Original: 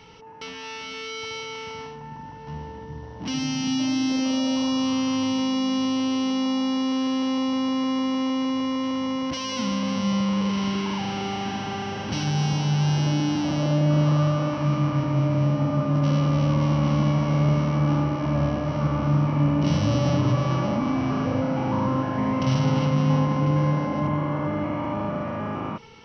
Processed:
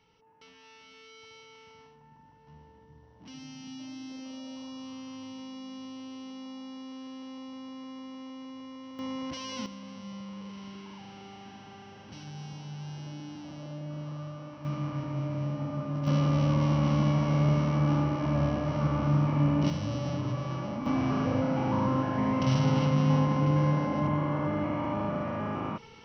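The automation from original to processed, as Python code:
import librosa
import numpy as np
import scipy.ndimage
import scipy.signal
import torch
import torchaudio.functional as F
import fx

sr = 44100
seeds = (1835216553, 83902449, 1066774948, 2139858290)

y = fx.gain(x, sr, db=fx.steps((0.0, -18.5), (8.99, -9.0), (9.66, -18.5), (14.65, -10.5), (16.07, -4.0), (19.7, -10.5), (20.86, -3.5)))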